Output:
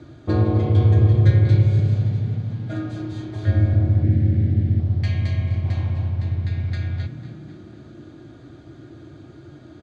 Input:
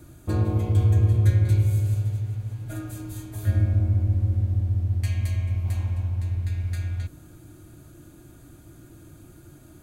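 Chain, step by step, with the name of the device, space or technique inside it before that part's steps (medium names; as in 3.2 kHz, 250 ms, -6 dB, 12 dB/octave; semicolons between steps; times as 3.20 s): frequency-shifting delay pedal into a guitar cabinet (frequency-shifting echo 250 ms, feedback 52%, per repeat +31 Hz, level -14 dB; cabinet simulation 110–4400 Hz, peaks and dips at 180 Hz -7 dB, 950 Hz -4 dB, 1.4 kHz -3 dB, 2.6 kHz -7 dB); 4.04–4.80 s: ten-band graphic EQ 250 Hz +8 dB, 1 kHz -11 dB, 2 kHz +9 dB; trim +8 dB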